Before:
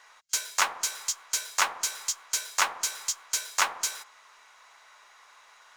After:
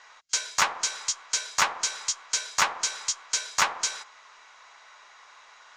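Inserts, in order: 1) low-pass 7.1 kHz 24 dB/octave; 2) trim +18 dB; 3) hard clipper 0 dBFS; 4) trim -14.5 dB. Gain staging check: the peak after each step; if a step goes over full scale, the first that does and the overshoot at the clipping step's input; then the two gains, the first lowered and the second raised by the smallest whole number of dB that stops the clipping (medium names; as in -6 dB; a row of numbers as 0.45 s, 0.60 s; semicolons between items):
-10.5 dBFS, +7.5 dBFS, 0.0 dBFS, -14.5 dBFS; step 2, 7.5 dB; step 2 +10 dB, step 4 -6.5 dB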